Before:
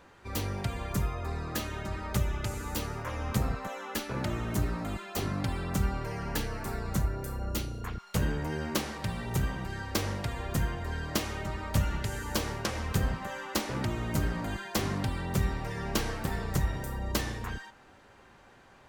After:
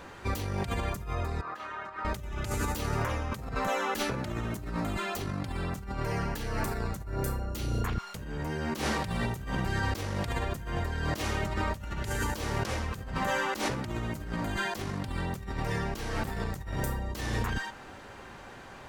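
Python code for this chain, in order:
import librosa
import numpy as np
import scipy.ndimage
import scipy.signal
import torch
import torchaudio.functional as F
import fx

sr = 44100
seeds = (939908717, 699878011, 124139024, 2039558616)

y = fx.over_compress(x, sr, threshold_db=-38.0, ratio=-1.0)
y = fx.bandpass_q(y, sr, hz=1200.0, q=1.8, at=(1.41, 2.05))
y = y * 10.0 ** (5.0 / 20.0)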